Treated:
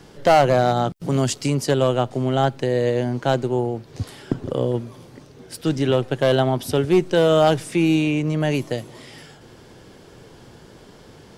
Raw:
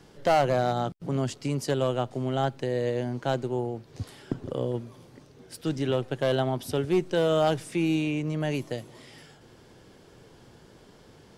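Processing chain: 0.96–1.50 s: treble shelf 3.9 kHz +9 dB; trim +7.5 dB

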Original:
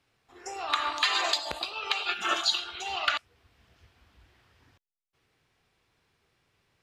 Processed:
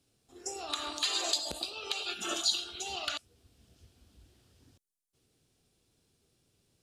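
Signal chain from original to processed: peaking EQ 9.3 kHz +9 dB 1.1 oct; in parallel at -2.5 dB: peak limiter -20.5 dBFS, peak gain reduction 11 dB; on the sum: graphic EQ 250/1000/2000 Hz +4/-10/-12 dB; trim -4.5 dB

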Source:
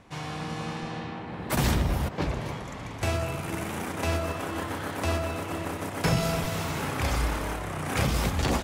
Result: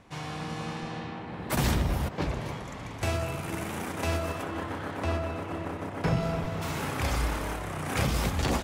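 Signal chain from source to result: 4.42–6.61 s: low-pass 3.2 kHz -> 1.3 kHz 6 dB/octave; trim -1.5 dB

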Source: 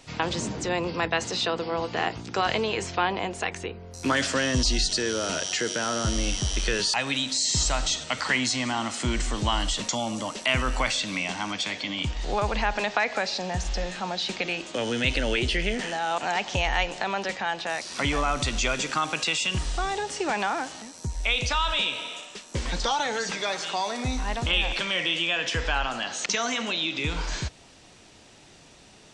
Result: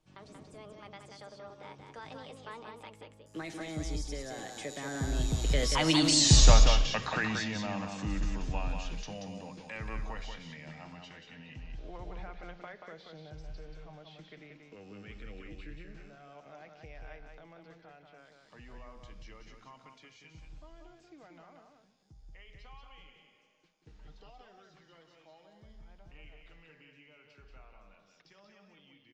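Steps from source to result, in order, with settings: Doppler pass-by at 6.20 s, 59 m/s, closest 13 m; tilt EQ -2 dB/octave; hum notches 60/120/180 Hz; comb 6.5 ms, depth 32%; delay 183 ms -5 dB; trim +5 dB

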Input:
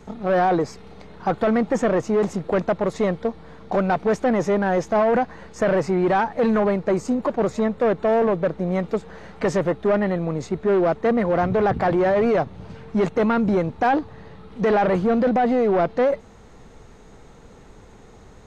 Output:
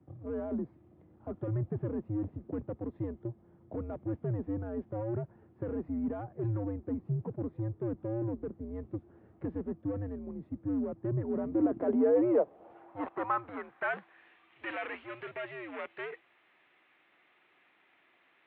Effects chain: band-pass sweep 220 Hz -> 2.5 kHz, 10.99–14.26 s; mistuned SSB -110 Hz 280–3500 Hz; trim -3 dB

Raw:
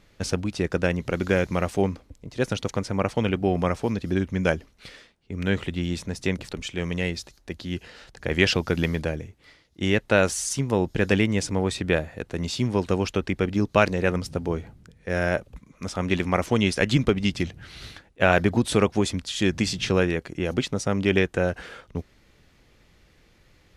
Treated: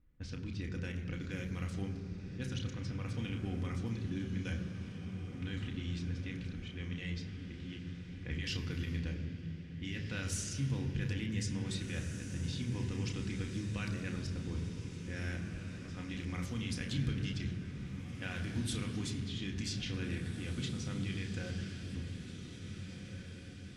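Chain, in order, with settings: de-hum 50.06 Hz, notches 37; level-controlled noise filter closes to 1 kHz, open at -19.5 dBFS; amplifier tone stack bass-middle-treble 6-0-2; peak limiter -33.5 dBFS, peak gain reduction 12.5 dB; echo that smears into a reverb 1853 ms, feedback 50%, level -9 dB; on a send at -2 dB: reverberation RT60 3.2 s, pre-delay 3 ms; on the sum: trim +3.5 dB

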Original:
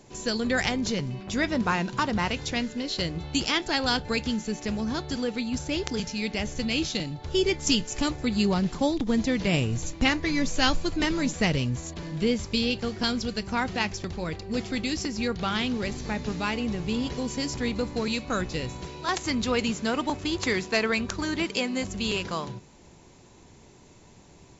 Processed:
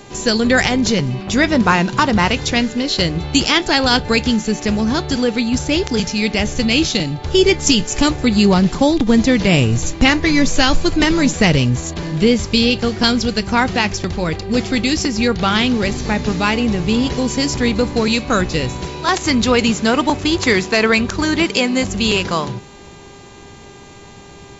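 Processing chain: mains buzz 400 Hz, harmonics 11, -56 dBFS; loudness maximiser +13 dB; trim -1 dB

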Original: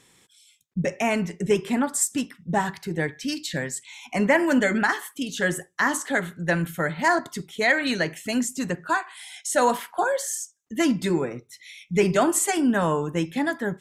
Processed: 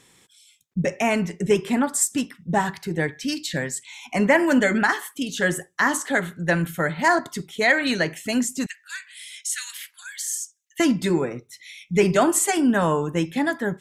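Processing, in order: 8.66–10.80 s: steep high-pass 1.9 kHz 36 dB/octave; trim +2 dB

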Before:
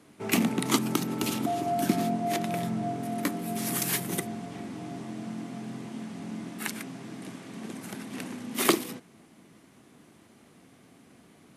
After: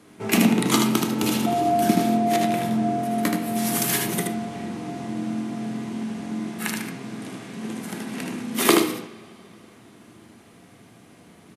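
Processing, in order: delay 77 ms -4 dB; on a send at -5 dB: reverberation, pre-delay 3 ms; on the sum: trim +4 dB

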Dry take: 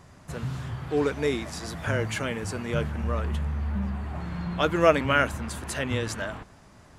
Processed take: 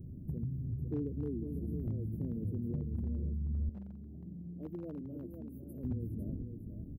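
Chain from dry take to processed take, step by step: inverse Chebyshev band-stop 1–7.5 kHz, stop band 60 dB; compression 5:1, threshold -43 dBFS, peak gain reduction 16.5 dB; delay 503 ms -7 dB; hard clipper -35.5 dBFS, distortion -30 dB; 3.69–5.84 s: high-pass 390 Hz 6 dB/octave; trim +7 dB

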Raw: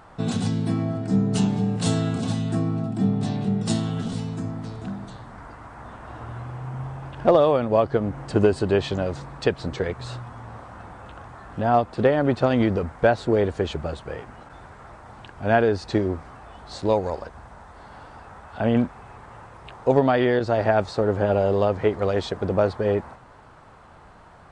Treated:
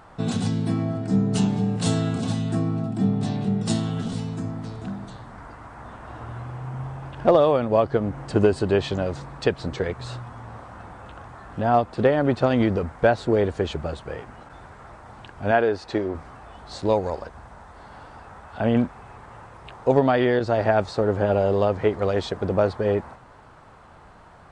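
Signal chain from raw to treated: 15.51–16.15 s: tone controls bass -9 dB, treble -5 dB

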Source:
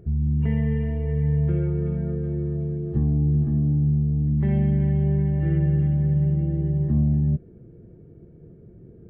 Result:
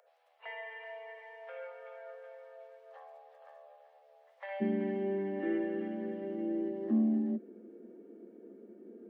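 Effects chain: steep high-pass 520 Hz 96 dB/octave, from 4.60 s 210 Hz

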